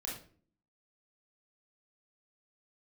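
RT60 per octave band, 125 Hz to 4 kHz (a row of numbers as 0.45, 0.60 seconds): 0.70, 0.75, 0.50, 0.40, 0.35, 0.35 seconds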